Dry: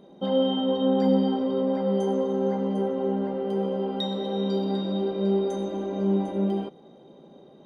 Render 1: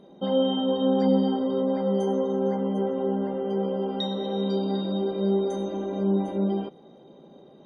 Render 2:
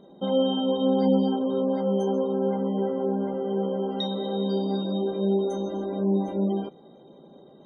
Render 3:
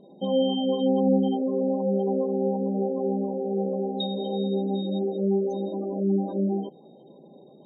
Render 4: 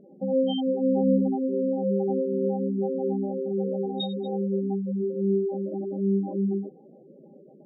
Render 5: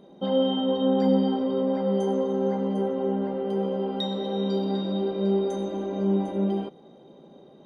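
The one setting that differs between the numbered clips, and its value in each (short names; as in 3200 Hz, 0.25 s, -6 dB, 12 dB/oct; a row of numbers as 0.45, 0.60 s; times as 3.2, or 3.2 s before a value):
spectral gate, under each frame's peak: -45, -35, -20, -10, -60 dB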